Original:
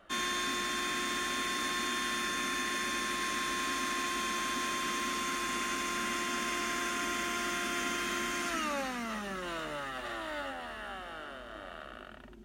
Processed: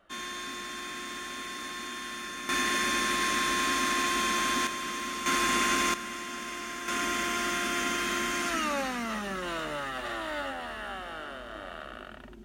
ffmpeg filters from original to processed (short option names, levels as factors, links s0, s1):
-af "asetnsamples=n=441:p=0,asendcmd='2.49 volume volume 6dB;4.67 volume volume -0.5dB;5.26 volume volume 8dB;5.94 volume volume -3.5dB;6.88 volume volume 4dB',volume=0.596"